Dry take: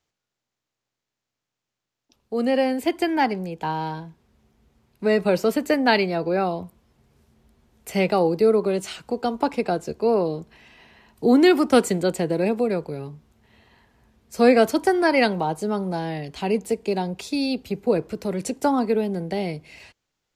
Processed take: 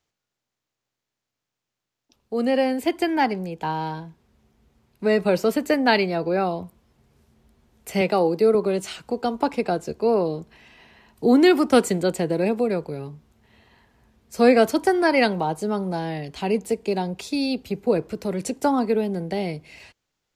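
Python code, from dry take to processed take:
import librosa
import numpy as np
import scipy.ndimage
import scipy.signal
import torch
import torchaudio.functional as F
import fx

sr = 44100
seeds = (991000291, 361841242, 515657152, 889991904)

y = fx.highpass(x, sr, hz=160.0, slope=12, at=(8.01, 8.55))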